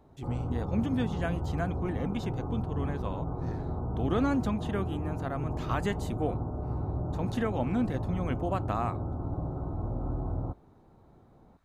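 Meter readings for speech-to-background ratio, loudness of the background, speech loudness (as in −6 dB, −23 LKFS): 1.0 dB, −35.0 LKFS, −34.0 LKFS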